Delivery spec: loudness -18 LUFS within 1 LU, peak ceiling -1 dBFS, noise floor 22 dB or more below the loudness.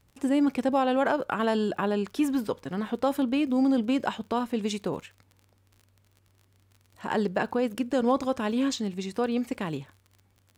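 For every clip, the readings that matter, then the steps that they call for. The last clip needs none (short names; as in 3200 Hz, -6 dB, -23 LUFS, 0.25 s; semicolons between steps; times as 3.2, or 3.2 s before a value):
ticks 36/s; loudness -27.5 LUFS; peak -14.5 dBFS; loudness target -18.0 LUFS
-> de-click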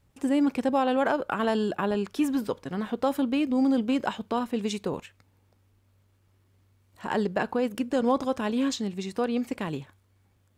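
ticks 0.28/s; loudness -27.5 LUFS; peak -13.5 dBFS; loudness target -18.0 LUFS
-> gain +9.5 dB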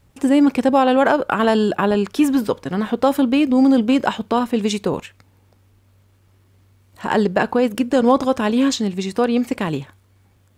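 loudness -18.0 LUFS; peak -4.0 dBFS; noise floor -56 dBFS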